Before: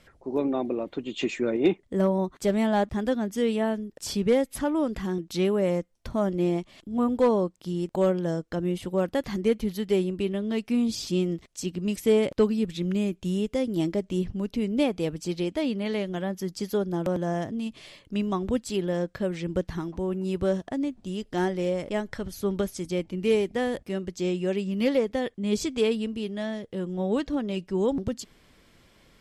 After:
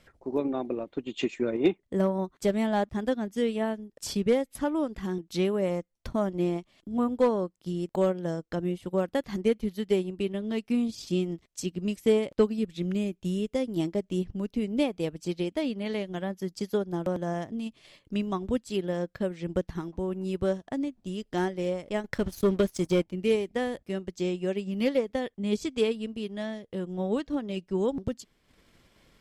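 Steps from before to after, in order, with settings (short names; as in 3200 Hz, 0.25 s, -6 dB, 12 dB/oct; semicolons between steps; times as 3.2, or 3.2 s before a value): transient shaper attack +3 dB, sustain -8 dB; 22.04–23.11 sample leveller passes 2; gain -3 dB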